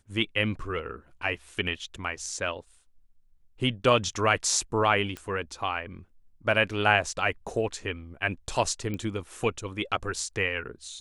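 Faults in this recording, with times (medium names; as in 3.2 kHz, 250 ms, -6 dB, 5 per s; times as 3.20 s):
5.17 s: pop -21 dBFS
8.94 s: pop -21 dBFS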